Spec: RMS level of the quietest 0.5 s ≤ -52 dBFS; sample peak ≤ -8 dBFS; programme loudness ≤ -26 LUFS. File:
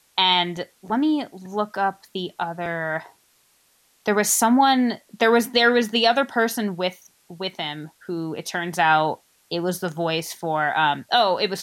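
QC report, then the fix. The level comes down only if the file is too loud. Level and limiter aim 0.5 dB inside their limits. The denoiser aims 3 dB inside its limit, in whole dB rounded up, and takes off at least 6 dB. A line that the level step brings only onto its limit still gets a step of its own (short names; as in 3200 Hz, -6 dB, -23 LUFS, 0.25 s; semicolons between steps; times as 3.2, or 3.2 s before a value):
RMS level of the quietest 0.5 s -62 dBFS: OK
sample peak -5.5 dBFS: fail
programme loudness -22.0 LUFS: fail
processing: gain -4.5 dB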